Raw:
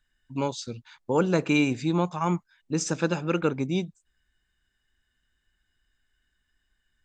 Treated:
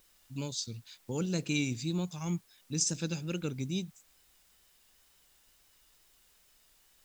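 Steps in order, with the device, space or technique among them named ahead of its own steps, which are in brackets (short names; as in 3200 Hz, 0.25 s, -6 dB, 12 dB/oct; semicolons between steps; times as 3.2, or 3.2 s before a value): EQ curve 110 Hz 0 dB, 1100 Hz -19 dB, 4800 Hz +4 dB; noise-reduction cassette on a plain deck (mismatched tape noise reduction encoder only; wow and flutter; white noise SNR 29 dB); gain -2 dB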